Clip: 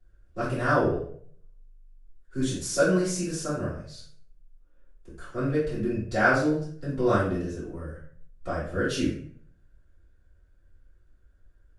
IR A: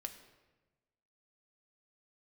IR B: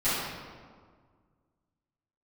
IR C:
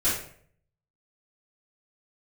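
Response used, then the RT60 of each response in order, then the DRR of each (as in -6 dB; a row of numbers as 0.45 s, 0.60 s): C; 1.2 s, 1.7 s, 0.60 s; 5.5 dB, -17.0 dB, -11.5 dB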